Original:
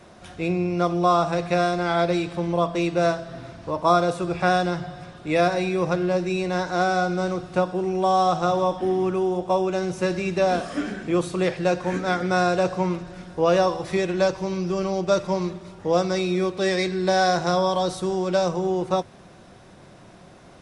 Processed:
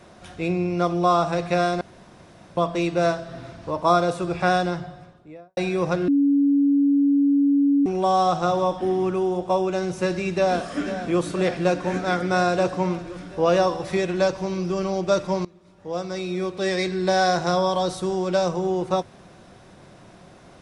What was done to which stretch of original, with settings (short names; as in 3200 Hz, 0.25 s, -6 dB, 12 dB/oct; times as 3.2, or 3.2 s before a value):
1.81–2.57 room tone
4.55–5.57 studio fade out
6.08–7.86 bleep 282 Hz -15 dBFS
10.31–11.23 echo throw 0.49 s, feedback 80%, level -11 dB
15.45–16.93 fade in, from -22 dB